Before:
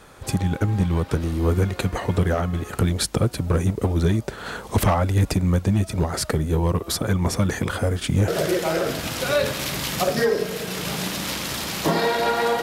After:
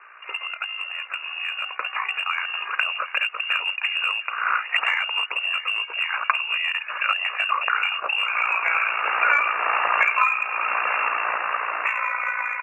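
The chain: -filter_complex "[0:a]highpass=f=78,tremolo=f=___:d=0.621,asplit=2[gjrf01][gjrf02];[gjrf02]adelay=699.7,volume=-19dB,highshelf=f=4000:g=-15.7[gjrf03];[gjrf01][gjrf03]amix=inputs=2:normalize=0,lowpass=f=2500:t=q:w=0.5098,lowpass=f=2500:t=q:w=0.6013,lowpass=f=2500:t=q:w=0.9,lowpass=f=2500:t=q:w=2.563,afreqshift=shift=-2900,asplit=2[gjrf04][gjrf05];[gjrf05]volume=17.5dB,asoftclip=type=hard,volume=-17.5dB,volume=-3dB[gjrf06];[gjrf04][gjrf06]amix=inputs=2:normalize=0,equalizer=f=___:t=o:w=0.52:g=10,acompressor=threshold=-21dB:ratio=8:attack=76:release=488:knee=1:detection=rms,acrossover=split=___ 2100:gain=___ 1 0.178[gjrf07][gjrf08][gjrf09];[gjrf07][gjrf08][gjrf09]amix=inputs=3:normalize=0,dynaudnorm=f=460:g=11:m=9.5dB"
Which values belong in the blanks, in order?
58, 1200, 490, 0.0631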